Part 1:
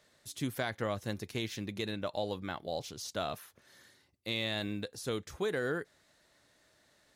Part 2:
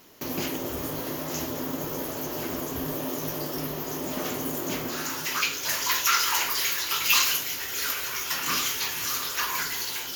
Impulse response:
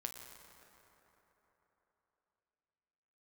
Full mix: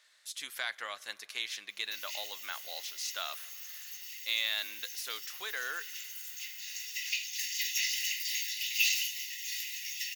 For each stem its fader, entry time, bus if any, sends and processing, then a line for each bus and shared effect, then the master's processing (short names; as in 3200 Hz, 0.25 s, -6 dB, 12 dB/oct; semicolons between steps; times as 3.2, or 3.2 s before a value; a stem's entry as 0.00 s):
+1.0 dB, 0.00 s, send -14 dB, HPF 1400 Hz 12 dB/oct; bell 2800 Hz +3 dB 2.5 oct
-9.0 dB, 1.70 s, send -5.5 dB, Chebyshev high-pass 2000 Hz, order 6; bell 11000 Hz -6.5 dB 0.74 oct; comb 1.1 ms, depth 57%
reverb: on, RT60 3.9 s, pre-delay 8 ms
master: bell 14000 Hz -3 dB 0.33 oct